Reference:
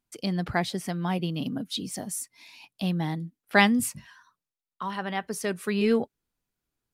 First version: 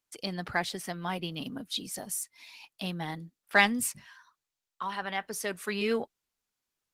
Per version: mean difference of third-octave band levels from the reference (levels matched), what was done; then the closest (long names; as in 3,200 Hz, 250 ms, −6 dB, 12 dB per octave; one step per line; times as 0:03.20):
3.0 dB: low-shelf EQ 430 Hz −12 dB
in parallel at −10 dB: soft clipping −21.5 dBFS, distortion −8 dB
on the sum: level −1 dB
Opus 16 kbit/s 48,000 Hz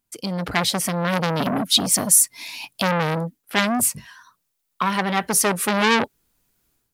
7.0 dB: high-shelf EQ 7,700 Hz +9 dB
automatic gain control gain up to 11.5 dB
saturating transformer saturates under 3,500 Hz
level +3 dB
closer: first